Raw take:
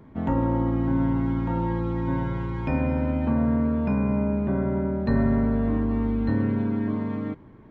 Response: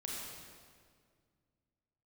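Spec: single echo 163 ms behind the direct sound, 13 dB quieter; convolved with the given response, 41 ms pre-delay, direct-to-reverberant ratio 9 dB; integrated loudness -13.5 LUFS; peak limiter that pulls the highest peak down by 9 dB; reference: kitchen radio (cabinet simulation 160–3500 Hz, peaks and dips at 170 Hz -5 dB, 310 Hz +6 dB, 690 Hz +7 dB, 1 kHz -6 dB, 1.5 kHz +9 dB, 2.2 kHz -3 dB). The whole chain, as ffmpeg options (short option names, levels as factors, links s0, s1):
-filter_complex "[0:a]alimiter=limit=0.106:level=0:latency=1,aecho=1:1:163:0.224,asplit=2[s0][s1];[1:a]atrim=start_sample=2205,adelay=41[s2];[s1][s2]afir=irnorm=-1:irlink=0,volume=0.335[s3];[s0][s3]amix=inputs=2:normalize=0,highpass=160,equalizer=f=170:t=q:w=4:g=-5,equalizer=f=310:t=q:w=4:g=6,equalizer=f=690:t=q:w=4:g=7,equalizer=f=1000:t=q:w=4:g=-6,equalizer=f=1500:t=q:w=4:g=9,equalizer=f=2200:t=q:w=4:g=-3,lowpass=f=3500:w=0.5412,lowpass=f=3500:w=1.3066,volume=5.01"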